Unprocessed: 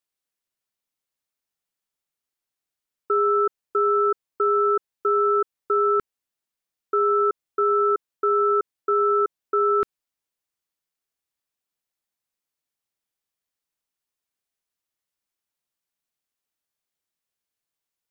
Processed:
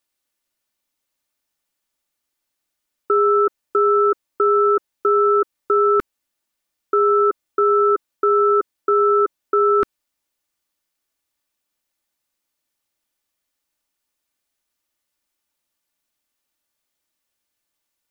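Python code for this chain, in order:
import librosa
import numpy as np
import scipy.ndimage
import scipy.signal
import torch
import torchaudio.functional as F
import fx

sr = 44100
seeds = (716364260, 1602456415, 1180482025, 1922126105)

y = x + 0.38 * np.pad(x, (int(3.4 * sr / 1000.0), 0))[:len(x)]
y = y * librosa.db_to_amplitude(7.5)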